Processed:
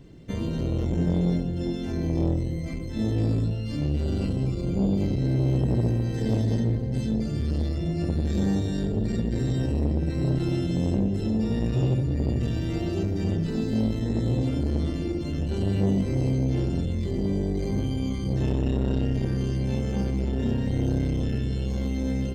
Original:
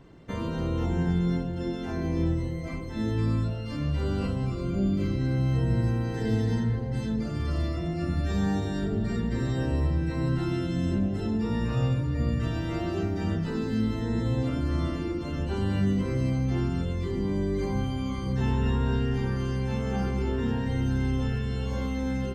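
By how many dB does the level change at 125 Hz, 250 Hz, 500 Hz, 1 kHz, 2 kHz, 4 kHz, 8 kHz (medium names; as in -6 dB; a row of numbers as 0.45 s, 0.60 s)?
+2.0 dB, +2.0 dB, +1.5 dB, -4.5 dB, -4.5 dB, +0.5 dB, no reading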